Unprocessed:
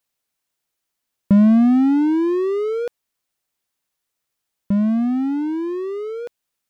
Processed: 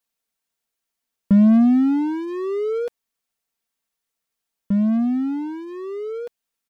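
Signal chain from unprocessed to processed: comb 4.4 ms, depth 49%; trim -4 dB

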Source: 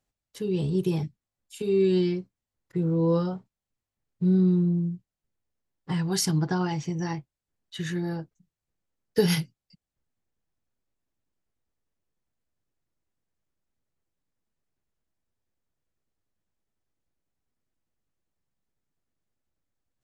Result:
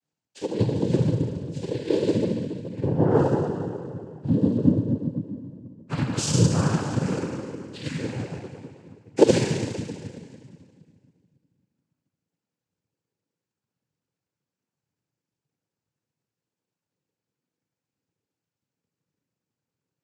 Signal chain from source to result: FDN reverb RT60 2.1 s, low-frequency decay 1.3×, high-frequency decay 0.9×, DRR -9.5 dB; transient shaper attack +7 dB, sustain -1 dB; noise-vocoded speech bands 8; trim -9 dB

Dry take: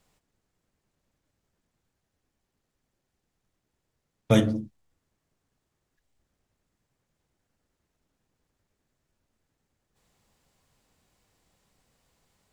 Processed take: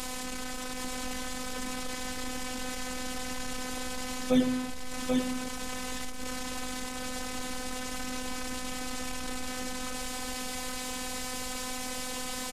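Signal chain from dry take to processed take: one-bit delta coder 64 kbps, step -27.5 dBFS; hum notches 60/120/180/240/300/360/420/480/540 Hz; delay 787 ms -5 dB; robot voice 253 Hz; saturation -13 dBFS, distortion -20 dB

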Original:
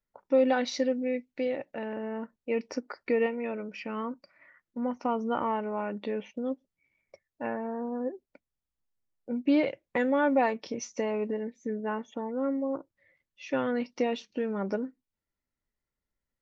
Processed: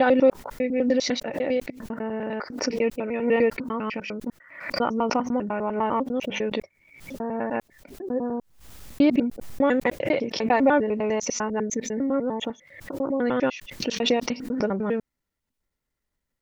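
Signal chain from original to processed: slices played last to first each 100 ms, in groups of 6; swell ahead of each attack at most 84 dB/s; trim +5.5 dB

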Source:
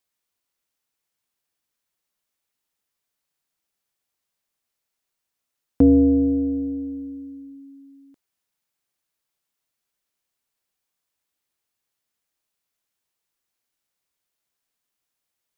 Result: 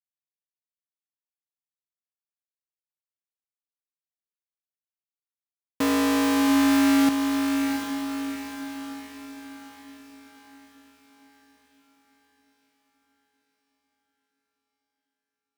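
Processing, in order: Schmitt trigger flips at -30.5 dBFS; high-pass 170 Hz 12 dB/octave; echo that smears into a reverb 728 ms, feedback 51%, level -5 dB; trim +8 dB

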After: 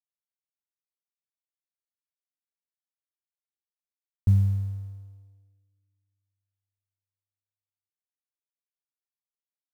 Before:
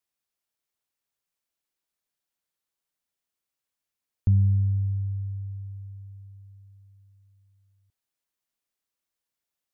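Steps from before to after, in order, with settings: companding laws mixed up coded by A; upward expansion 2.5:1, over -40 dBFS; trim +2 dB

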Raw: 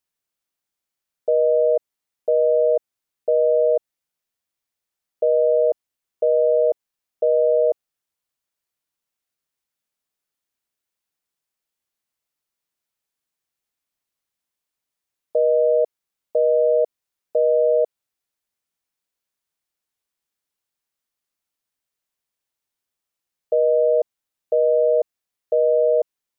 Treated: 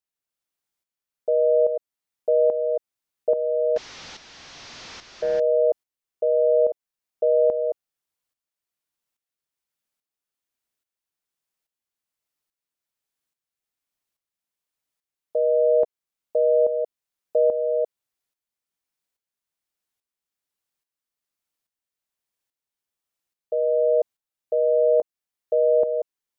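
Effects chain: 3.76–5.40 s: one-bit delta coder 32 kbps, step -33 dBFS; tremolo saw up 1.2 Hz, depth 65%

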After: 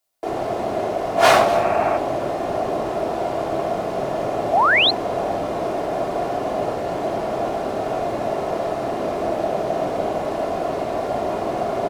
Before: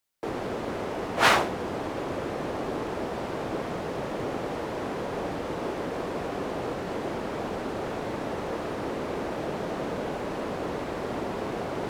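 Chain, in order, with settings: peaking EQ 650 Hz +14 dB 0.85 oct; delay 240 ms -15.5 dB; reverberation RT60 0.75 s, pre-delay 3 ms, DRR -0.5 dB; spectral replace 1.52–1.95 s, 600–2800 Hz before; treble shelf 3.3 kHz +7.5 dB; painted sound rise, 4.53–4.91 s, 620–4400 Hz -12 dBFS; trim -3.5 dB

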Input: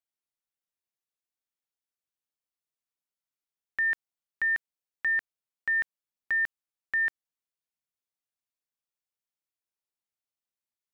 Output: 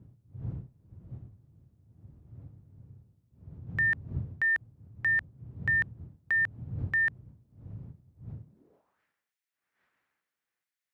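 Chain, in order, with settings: wind noise 82 Hz -43 dBFS; high-pass sweep 110 Hz -> 1.8 kHz, 8.40–9.02 s

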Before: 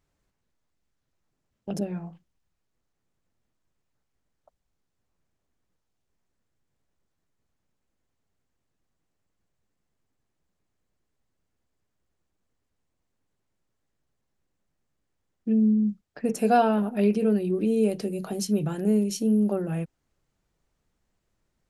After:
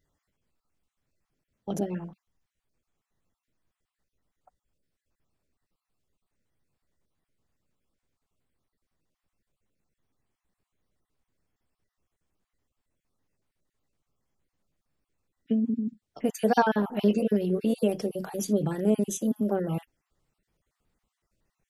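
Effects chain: random holes in the spectrogram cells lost 25%; formant shift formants +2 st

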